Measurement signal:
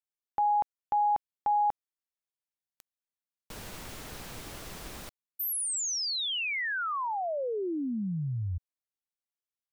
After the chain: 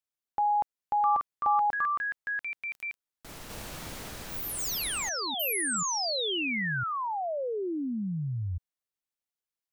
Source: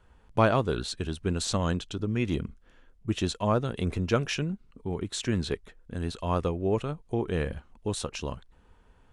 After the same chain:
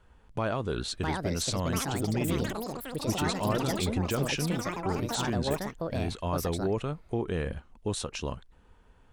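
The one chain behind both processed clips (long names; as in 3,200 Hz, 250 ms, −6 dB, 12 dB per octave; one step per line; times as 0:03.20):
brickwall limiter −20.5 dBFS
delay with pitch and tempo change per echo 770 ms, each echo +6 semitones, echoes 3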